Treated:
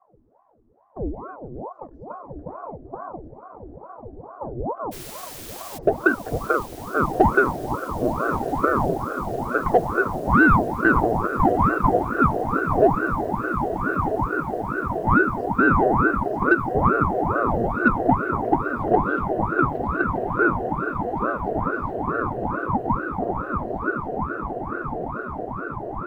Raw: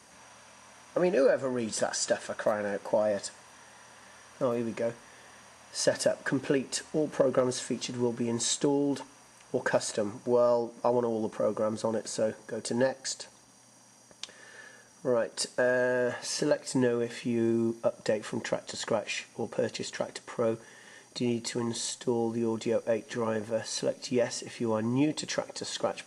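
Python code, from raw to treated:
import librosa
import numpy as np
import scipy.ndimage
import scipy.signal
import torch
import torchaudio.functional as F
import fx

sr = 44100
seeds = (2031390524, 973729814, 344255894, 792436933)

p1 = fx.fade_out_tail(x, sr, length_s=6.3)
p2 = p1 + 10.0 ** (-21.0 / 20.0) * np.pad(p1, (int(535 * sr / 1000.0), 0))[:len(p1)]
p3 = fx.filter_sweep_lowpass(p2, sr, from_hz=160.0, to_hz=590.0, start_s=4.32, end_s=6.19, q=3.6)
p4 = 10.0 ** (-16.0 / 20.0) * np.tanh(p3 / 10.0 ** (-16.0 / 20.0))
p5 = p3 + F.gain(torch.from_numpy(p4), -5.5).numpy()
p6 = fx.quant_dither(p5, sr, seeds[0], bits=6, dither='triangular', at=(4.91, 5.77), fade=0.02)
p7 = fx.echo_diffused(p6, sr, ms=1228, feedback_pct=79, wet_db=-6.5)
y = fx.ring_lfo(p7, sr, carrier_hz=520.0, swing_pct=80, hz=2.3)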